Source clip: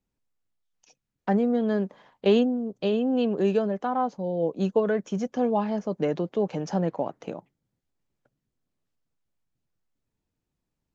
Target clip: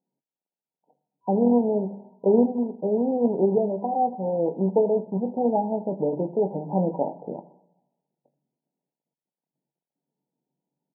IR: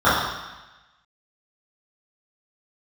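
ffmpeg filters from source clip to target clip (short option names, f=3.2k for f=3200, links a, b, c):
-filter_complex "[0:a]bandreject=f=50:t=h:w=6,bandreject=f=100:t=h:w=6,bandreject=f=150:t=h:w=6,bandreject=f=200:t=h:w=6,bandreject=f=250:t=h:w=6,bandreject=f=300:t=h:w=6,bandreject=f=350:t=h:w=6,aecho=1:1:21|80:0.398|0.133,asplit=2[a][b];[1:a]atrim=start_sample=2205[c];[b][c]afir=irnorm=-1:irlink=0,volume=-39.5dB[d];[a][d]amix=inputs=2:normalize=0,acrusher=bits=2:mode=log:mix=0:aa=0.000001,afftfilt=real='re*between(b*sr/4096,130,980)':imag='im*between(b*sr/4096,130,980)':win_size=4096:overlap=0.75,volume=1.5dB"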